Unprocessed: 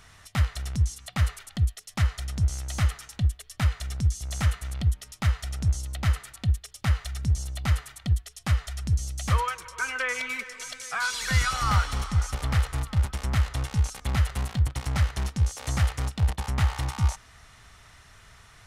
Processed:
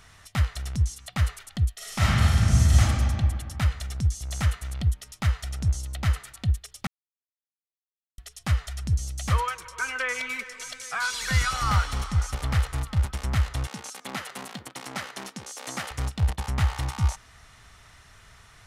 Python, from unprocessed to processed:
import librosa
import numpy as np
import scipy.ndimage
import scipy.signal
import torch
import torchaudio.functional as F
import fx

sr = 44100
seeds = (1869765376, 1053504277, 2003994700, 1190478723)

y = fx.reverb_throw(x, sr, start_s=1.75, length_s=1.04, rt60_s=2.3, drr_db=-9.5)
y = fx.highpass(y, sr, hz=210.0, slope=24, at=(13.67, 15.91))
y = fx.edit(y, sr, fx.silence(start_s=6.87, length_s=1.31), tone=tone)